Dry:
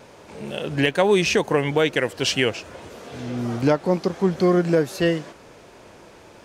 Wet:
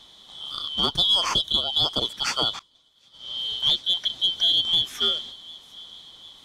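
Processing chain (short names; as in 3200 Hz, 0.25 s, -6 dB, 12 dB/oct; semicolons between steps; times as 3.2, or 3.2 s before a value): four-band scrambler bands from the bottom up 2413; 0.78–1.88 low shelf 73 Hz +10.5 dB; in parallel at -6 dB: one-sided clip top -13.5 dBFS; on the sum: thin delay 0.748 s, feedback 55%, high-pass 2700 Hz, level -19.5 dB; 2.59–4.04 expander -22 dBFS; gain -7 dB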